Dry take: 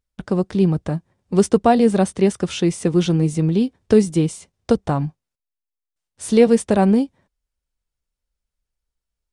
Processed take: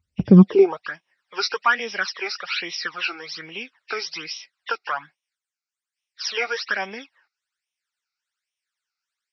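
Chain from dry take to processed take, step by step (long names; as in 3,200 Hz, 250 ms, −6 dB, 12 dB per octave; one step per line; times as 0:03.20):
hearing-aid frequency compression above 1,800 Hz 1.5 to 1
all-pass phaser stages 12, 1.2 Hz, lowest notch 170–1,500 Hz
high-pass filter sweep 87 Hz → 1,500 Hz, 0:00.24–0:00.85
level +6 dB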